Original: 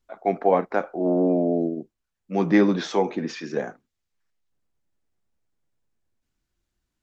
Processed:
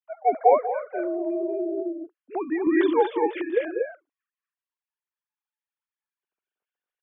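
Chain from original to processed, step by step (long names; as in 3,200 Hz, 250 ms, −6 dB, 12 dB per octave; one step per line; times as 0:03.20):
three sine waves on the formant tracks
loudspeakers that aren't time-aligned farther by 66 metres −9 dB, 81 metres −4 dB
0:00.57–0:02.67: downward compressor 5 to 1, threshold −25 dBFS, peak gain reduction 11.5 dB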